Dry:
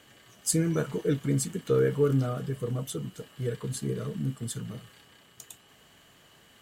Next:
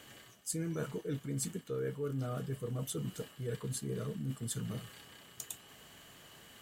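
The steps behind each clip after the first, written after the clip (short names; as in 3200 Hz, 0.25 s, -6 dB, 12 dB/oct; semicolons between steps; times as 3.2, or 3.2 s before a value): high shelf 8400 Hz +5 dB; reverse; compressor 6:1, threshold -36 dBFS, peak gain reduction 16 dB; reverse; gain +1 dB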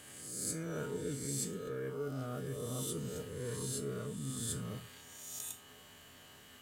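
spectral swells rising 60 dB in 1.25 s; resonator 84 Hz, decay 0.32 s, harmonics odd, mix 70%; gain +4 dB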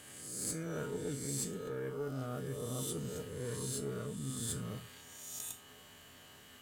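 tube stage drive 26 dB, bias 0.4; gain +1.5 dB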